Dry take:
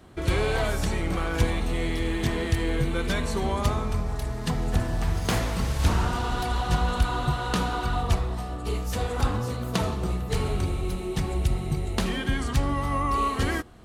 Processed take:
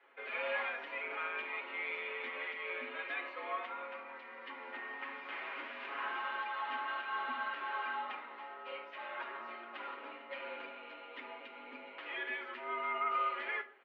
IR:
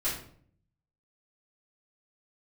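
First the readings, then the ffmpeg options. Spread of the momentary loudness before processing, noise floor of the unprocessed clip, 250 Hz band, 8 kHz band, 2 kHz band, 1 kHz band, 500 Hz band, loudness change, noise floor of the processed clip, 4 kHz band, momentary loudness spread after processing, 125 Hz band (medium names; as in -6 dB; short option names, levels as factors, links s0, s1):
5 LU, -33 dBFS, -27.5 dB, under -40 dB, -4.5 dB, -8.5 dB, -15.0 dB, -12.5 dB, -52 dBFS, -14.0 dB, 12 LU, under -40 dB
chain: -filter_complex "[0:a]aderivative,aecho=1:1:7:0.96,alimiter=level_in=1.5:limit=0.0631:level=0:latency=1:release=159,volume=0.668,asplit=2[s0][s1];[1:a]atrim=start_sample=2205,asetrate=70560,aresample=44100[s2];[s1][s2]afir=irnorm=-1:irlink=0,volume=0.398[s3];[s0][s3]amix=inputs=2:normalize=0,highpass=f=160:t=q:w=0.5412,highpass=f=160:t=q:w=1.307,lowpass=f=2400:t=q:w=0.5176,lowpass=f=2400:t=q:w=0.7071,lowpass=f=2400:t=q:w=1.932,afreqshift=110,volume=1.58"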